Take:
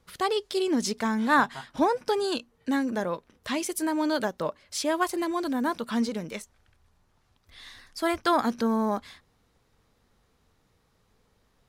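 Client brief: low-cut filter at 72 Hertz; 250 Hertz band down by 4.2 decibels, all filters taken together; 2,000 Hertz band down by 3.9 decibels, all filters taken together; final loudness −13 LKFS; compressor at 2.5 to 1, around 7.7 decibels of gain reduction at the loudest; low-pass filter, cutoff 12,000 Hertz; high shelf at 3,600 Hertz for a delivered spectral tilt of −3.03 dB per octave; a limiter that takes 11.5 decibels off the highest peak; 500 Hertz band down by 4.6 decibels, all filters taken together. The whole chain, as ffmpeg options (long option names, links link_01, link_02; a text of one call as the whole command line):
ffmpeg -i in.wav -af "highpass=72,lowpass=12000,equalizer=frequency=250:width_type=o:gain=-3.5,equalizer=frequency=500:width_type=o:gain=-5,equalizer=frequency=2000:width_type=o:gain=-7,highshelf=frequency=3600:gain=8.5,acompressor=threshold=-32dB:ratio=2.5,volume=24.5dB,alimiter=limit=-2.5dB:level=0:latency=1" out.wav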